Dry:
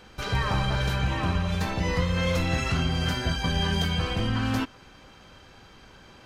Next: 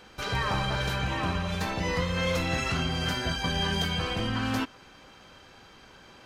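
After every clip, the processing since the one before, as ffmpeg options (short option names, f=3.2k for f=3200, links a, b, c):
-af "lowshelf=f=160:g=-7.5"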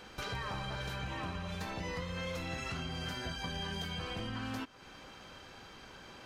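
-af "acompressor=threshold=-40dB:ratio=3"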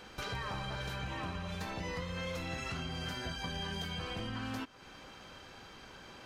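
-af anull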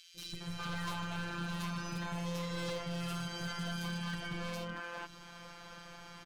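-filter_complex "[0:a]afftfilt=real='hypot(re,im)*cos(PI*b)':imag='0':win_size=1024:overlap=0.75,acrossover=split=370|2900[a][b][c];[a]adelay=150[d];[b]adelay=410[e];[d][e][c]amix=inputs=3:normalize=0,aeval=exprs='0.0119*(abs(mod(val(0)/0.0119+3,4)-2)-1)':c=same,volume=6.5dB"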